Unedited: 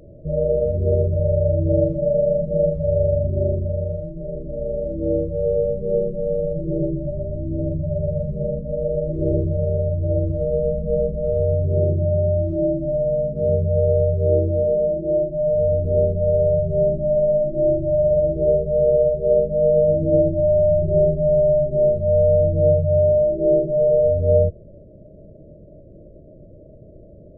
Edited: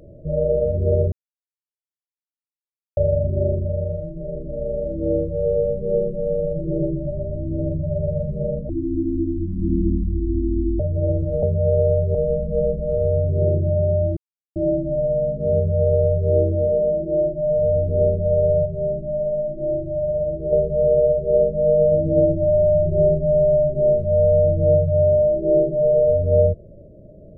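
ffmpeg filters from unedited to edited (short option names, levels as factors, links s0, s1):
-filter_complex "[0:a]asplit=10[s0][s1][s2][s3][s4][s5][s6][s7][s8][s9];[s0]atrim=end=1.12,asetpts=PTS-STARTPTS,afade=t=out:st=1.116:d=0.004:c=hsin[s10];[s1]atrim=start=1.12:end=2.97,asetpts=PTS-STARTPTS,volume=0[s11];[s2]atrim=start=2.97:end=8.694,asetpts=PTS-STARTPTS,afade=t=in:d=0.004:c=hsin[s12];[s3]atrim=start=8.69:end=9.87,asetpts=PTS-STARTPTS,asetrate=24696,aresample=44100[s13];[s4]atrim=start=9.866:end=10.502[s14];[s5]atrim=start=13.528:end=14.252[s15];[s6]atrim=start=10.498:end=12.52,asetpts=PTS-STARTPTS,afade=t=out:st=2.018:d=0.004:c=hsin,apad=pad_dur=0.39[s16];[s7]atrim=start=12.52:end=16.622,asetpts=PTS-STARTPTS,afade=t=in:d=0.004:c=hsin[s17];[s8]atrim=start=16.618:end=18.492,asetpts=PTS-STARTPTS,volume=0.562[s18];[s9]atrim=start=18.488[s19];[s10][s11][s12]concat=n=3:v=0:a=1[s20];[s20][s13]acrossfade=d=0.004:c1=hsin:c2=hsin[s21];[s21][s14]acrossfade=d=0.004:c1=hsin:c2=hsin[s22];[s22][s15]acrossfade=d=0.004:c1=hsin:c2=hsin[s23];[s16][s17]concat=n=2:v=0:a=1[s24];[s23][s24]acrossfade=d=0.004:c1=hsin:c2=hsin[s25];[s25][s18]acrossfade=d=0.004:c1=hsin:c2=hsin[s26];[s26][s19]acrossfade=d=0.004:c1=hsin:c2=hsin"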